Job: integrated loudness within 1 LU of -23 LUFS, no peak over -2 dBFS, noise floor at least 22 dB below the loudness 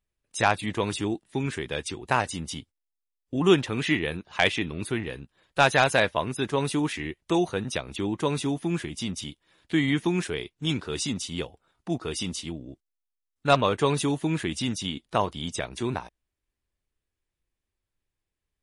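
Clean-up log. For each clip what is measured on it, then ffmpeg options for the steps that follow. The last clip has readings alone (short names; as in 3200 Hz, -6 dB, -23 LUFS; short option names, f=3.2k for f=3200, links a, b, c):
loudness -27.0 LUFS; peak -7.0 dBFS; loudness target -23.0 LUFS
-> -af "volume=4dB"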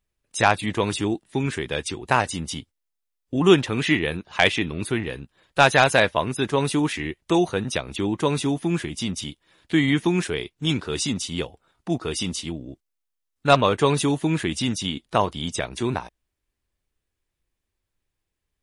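loudness -23.0 LUFS; peak -3.0 dBFS; noise floor -81 dBFS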